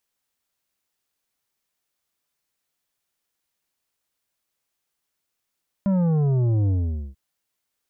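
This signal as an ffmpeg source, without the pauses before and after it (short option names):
-f lavfi -i "aevalsrc='0.119*clip((1.29-t)/0.47,0,1)*tanh(2.82*sin(2*PI*200*1.29/log(65/200)*(exp(log(65/200)*t/1.29)-1)))/tanh(2.82)':d=1.29:s=44100"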